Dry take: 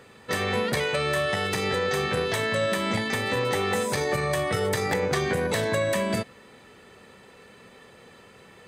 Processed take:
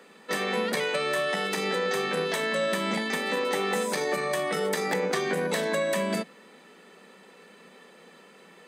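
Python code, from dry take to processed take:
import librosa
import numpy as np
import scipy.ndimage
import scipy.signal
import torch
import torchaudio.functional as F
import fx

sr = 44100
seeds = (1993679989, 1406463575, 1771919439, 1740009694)

y = scipy.signal.sosfilt(scipy.signal.butter(16, 160.0, 'highpass', fs=sr, output='sos'), x)
y = y * 10.0 ** (-1.5 / 20.0)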